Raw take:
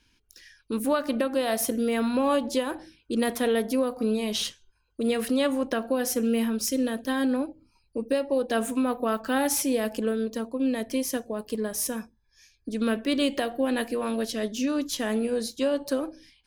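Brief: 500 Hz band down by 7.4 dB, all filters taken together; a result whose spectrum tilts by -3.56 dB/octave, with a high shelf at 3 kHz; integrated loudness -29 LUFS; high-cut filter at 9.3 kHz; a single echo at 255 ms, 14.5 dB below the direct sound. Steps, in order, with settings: low-pass 9.3 kHz; peaking EQ 500 Hz -8.5 dB; treble shelf 3 kHz +4.5 dB; delay 255 ms -14.5 dB

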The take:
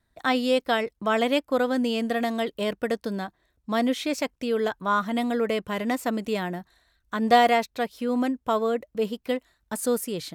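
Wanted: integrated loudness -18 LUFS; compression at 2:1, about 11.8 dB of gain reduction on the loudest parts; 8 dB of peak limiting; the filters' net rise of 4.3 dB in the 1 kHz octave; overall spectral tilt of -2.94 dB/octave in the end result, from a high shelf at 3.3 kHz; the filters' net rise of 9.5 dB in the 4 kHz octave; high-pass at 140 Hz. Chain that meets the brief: high-pass 140 Hz; peaking EQ 1 kHz +5.5 dB; treble shelf 3.3 kHz +6 dB; peaking EQ 4 kHz +8 dB; compression 2:1, threshold -30 dBFS; trim +13.5 dB; peak limiter -6 dBFS

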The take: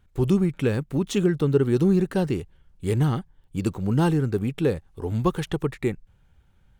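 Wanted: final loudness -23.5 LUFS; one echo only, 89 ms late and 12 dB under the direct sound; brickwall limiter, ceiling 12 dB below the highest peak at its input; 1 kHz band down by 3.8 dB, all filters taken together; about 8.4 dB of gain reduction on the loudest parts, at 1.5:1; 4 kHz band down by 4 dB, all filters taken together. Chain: peaking EQ 1 kHz -4.5 dB; peaking EQ 4 kHz -5 dB; compression 1.5:1, threshold -40 dBFS; peak limiter -29 dBFS; delay 89 ms -12 dB; trim +15 dB

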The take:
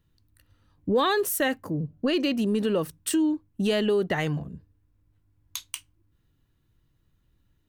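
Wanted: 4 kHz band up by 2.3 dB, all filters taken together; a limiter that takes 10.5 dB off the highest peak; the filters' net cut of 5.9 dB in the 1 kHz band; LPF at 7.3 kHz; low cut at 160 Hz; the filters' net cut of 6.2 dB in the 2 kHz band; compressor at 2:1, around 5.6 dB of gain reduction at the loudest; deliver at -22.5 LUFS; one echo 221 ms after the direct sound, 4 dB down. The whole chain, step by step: high-pass 160 Hz; low-pass 7.3 kHz; peaking EQ 1 kHz -6 dB; peaking EQ 2 kHz -8 dB; peaking EQ 4 kHz +7 dB; compression 2:1, threshold -31 dBFS; peak limiter -28 dBFS; delay 221 ms -4 dB; trim +13 dB

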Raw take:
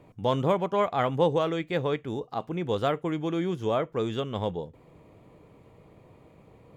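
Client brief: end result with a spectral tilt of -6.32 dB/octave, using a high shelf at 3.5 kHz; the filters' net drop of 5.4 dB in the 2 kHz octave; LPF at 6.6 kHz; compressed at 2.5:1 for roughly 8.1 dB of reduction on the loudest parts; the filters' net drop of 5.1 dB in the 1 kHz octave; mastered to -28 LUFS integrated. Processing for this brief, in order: low-pass 6.6 kHz; peaking EQ 1 kHz -5.5 dB; peaking EQ 2 kHz -6 dB; treble shelf 3.5 kHz +3 dB; compression 2.5:1, threshold -31 dBFS; trim +6.5 dB

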